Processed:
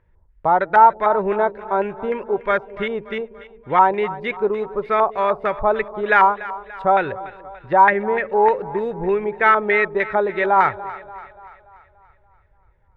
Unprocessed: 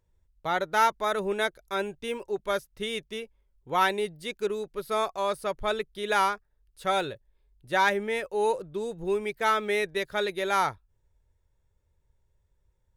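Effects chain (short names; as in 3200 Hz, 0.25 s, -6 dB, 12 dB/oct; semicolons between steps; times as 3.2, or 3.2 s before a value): high shelf 8400 Hz -10 dB; in parallel at -1 dB: compressor, threshold -35 dBFS, peak gain reduction 16.5 dB; on the sum: LFO low-pass square 3.3 Hz 930–1900 Hz; 6.96–8.31 air absorption 93 m; on a send: split-band echo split 520 Hz, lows 0.195 s, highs 0.289 s, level -16 dB; on the sum: gain +5 dB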